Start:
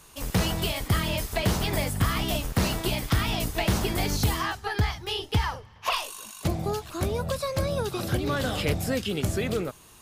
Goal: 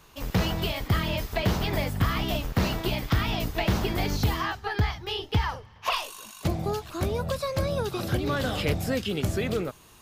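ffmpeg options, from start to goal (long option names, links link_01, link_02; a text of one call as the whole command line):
ffmpeg -i in.wav -af "asetnsamples=nb_out_samples=441:pad=0,asendcmd='5.49 equalizer g -5',equalizer=frequency=9400:width_type=o:width=0.95:gain=-13" out.wav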